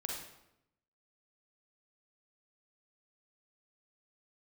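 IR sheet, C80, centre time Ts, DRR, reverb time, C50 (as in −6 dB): 5.0 dB, 52 ms, −1.5 dB, 0.85 s, 1.0 dB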